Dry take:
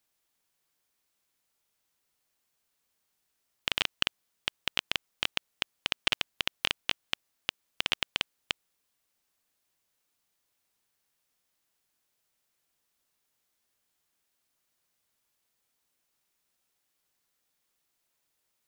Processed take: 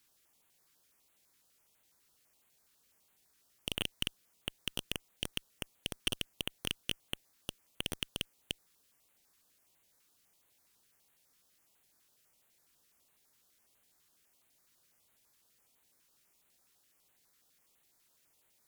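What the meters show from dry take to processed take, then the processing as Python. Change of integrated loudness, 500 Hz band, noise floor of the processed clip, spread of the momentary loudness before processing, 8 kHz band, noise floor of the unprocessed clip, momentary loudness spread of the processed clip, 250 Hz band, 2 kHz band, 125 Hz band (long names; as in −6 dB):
−7.5 dB, −3.5 dB, −73 dBFS, 8 LU, +0.5 dB, −79 dBFS, 9 LU, +2.0 dB, −10.5 dB, +3.5 dB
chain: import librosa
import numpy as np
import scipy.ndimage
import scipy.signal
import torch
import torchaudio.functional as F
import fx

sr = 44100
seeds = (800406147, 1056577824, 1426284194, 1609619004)

y = fx.tube_stage(x, sr, drive_db=31.0, bias=0.6)
y = fx.filter_held_notch(y, sr, hz=12.0, low_hz=660.0, high_hz=5200.0)
y = y * 10.0 ** (10.5 / 20.0)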